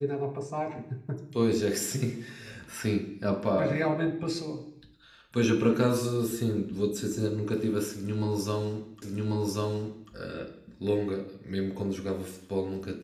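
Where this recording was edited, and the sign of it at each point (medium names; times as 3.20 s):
9.02 s: repeat of the last 1.09 s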